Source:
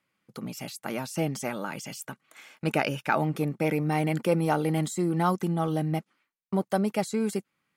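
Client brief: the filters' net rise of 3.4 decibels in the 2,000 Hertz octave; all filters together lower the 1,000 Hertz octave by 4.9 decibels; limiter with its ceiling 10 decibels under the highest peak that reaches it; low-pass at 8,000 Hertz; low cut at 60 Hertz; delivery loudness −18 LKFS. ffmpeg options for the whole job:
ffmpeg -i in.wav -af "highpass=60,lowpass=8000,equalizer=frequency=1000:width_type=o:gain=-8.5,equalizer=frequency=2000:width_type=o:gain=7,volume=12.5dB,alimiter=limit=-5.5dB:level=0:latency=1" out.wav

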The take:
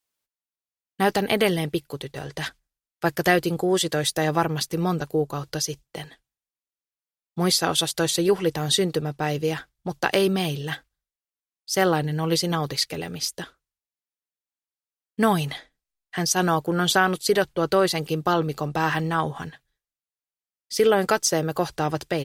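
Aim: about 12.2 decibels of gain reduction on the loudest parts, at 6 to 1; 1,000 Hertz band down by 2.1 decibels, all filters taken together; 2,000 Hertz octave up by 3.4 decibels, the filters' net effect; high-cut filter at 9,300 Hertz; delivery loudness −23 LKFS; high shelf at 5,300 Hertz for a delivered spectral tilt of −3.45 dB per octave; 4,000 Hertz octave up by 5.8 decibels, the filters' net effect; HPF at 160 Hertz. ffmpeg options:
ffmpeg -i in.wav -af "highpass=160,lowpass=9300,equalizer=frequency=1000:width_type=o:gain=-4.5,equalizer=frequency=2000:width_type=o:gain=5,equalizer=frequency=4000:width_type=o:gain=7.5,highshelf=frequency=5300:gain=-3.5,acompressor=threshold=-26dB:ratio=6,volume=7.5dB" out.wav

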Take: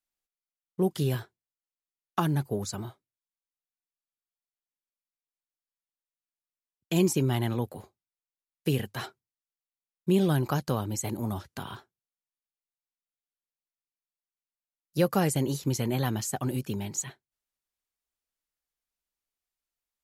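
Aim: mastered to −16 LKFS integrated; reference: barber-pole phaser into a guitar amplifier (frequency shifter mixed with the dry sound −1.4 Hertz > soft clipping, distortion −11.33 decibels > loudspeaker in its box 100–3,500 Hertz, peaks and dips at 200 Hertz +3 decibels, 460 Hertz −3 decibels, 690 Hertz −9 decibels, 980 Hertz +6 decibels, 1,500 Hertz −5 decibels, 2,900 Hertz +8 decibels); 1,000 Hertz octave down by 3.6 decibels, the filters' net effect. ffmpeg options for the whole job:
ffmpeg -i in.wav -filter_complex "[0:a]equalizer=frequency=1000:width_type=o:gain=-4,asplit=2[link_01][link_02];[link_02]afreqshift=-1.4[link_03];[link_01][link_03]amix=inputs=2:normalize=1,asoftclip=threshold=-27dB,highpass=100,equalizer=frequency=200:width_type=q:width=4:gain=3,equalizer=frequency=460:width_type=q:width=4:gain=-3,equalizer=frequency=690:width_type=q:width=4:gain=-9,equalizer=frequency=980:width_type=q:width=4:gain=6,equalizer=frequency=1500:width_type=q:width=4:gain=-5,equalizer=frequency=2900:width_type=q:width=4:gain=8,lowpass=frequency=3500:width=0.5412,lowpass=frequency=3500:width=1.3066,volume=20.5dB" out.wav

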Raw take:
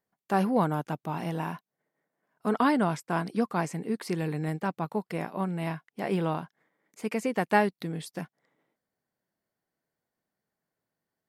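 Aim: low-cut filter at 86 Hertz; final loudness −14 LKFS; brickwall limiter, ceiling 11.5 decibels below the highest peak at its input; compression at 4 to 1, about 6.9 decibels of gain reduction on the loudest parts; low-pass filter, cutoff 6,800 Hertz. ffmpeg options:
ffmpeg -i in.wav -af "highpass=86,lowpass=6800,acompressor=threshold=-27dB:ratio=4,volume=24.5dB,alimiter=limit=-3dB:level=0:latency=1" out.wav

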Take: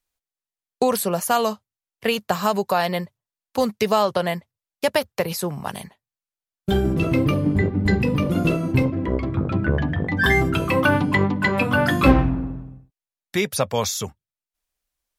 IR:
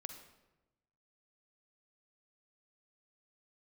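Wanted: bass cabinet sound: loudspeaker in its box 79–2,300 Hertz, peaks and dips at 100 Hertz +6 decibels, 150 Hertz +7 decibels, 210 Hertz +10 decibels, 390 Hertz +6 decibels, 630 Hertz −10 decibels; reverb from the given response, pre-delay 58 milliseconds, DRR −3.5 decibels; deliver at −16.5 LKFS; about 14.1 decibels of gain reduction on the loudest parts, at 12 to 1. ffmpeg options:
-filter_complex "[0:a]acompressor=threshold=-22dB:ratio=12,asplit=2[link_01][link_02];[1:a]atrim=start_sample=2205,adelay=58[link_03];[link_02][link_03]afir=irnorm=-1:irlink=0,volume=7dB[link_04];[link_01][link_04]amix=inputs=2:normalize=0,highpass=frequency=79:width=0.5412,highpass=frequency=79:width=1.3066,equalizer=frequency=100:width_type=q:width=4:gain=6,equalizer=frequency=150:width_type=q:width=4:gain=7,equalizer=frequency=210:width_type=q:width=4:gain=10,equalizer=frequency=390:width_type=q:width=4:gain=6,equalizer=frequency=630:width_type=q:width=4:gain=-10,lowpass=frequency=2300:width=0.5412,lowpass=frequency=2300:width=1.3066,volume=3.5dB"

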